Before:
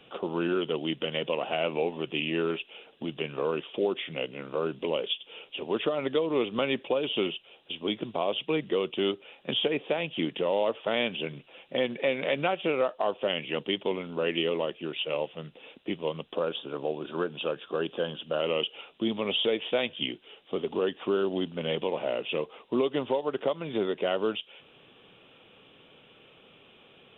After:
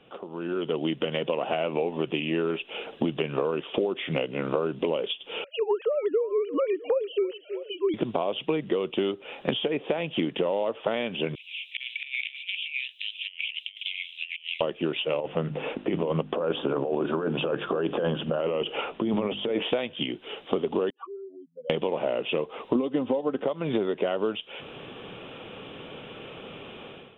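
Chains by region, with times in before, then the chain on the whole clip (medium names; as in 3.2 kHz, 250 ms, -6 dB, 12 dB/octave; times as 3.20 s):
5.44–7.94 s: formants replaced by sine waves + treble shelf 2.2 kHz -9 dB + feedback delay 323 ms, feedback 35%, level -22 dB
11.35–14.61 s: steep high-pass 2.3 kHz 72 dB/octave + compressor with a negative ratio -43 dBFS, ratio -0.5
15.20–19.63 s: compressor with a negative ratio -35 dBFS + low-pass 2.3 kHz + hum notches 50/100/150/200/250/300/350 Hz
20.90–21.70 s: spectral contrast enhancement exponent 4 + ladder band-pass 1.1 kHz, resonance 65%
22.75–23.44 s: high-pass 47 Hz + bass shelf 370 Hz +9.5 dB + comb 3.9 ms, depth 50%
whole clip: compression 16:1, threshold -38 dBFS; treble shelf 3.2 kHz -11.5 dB; level rider gain up to 16 dB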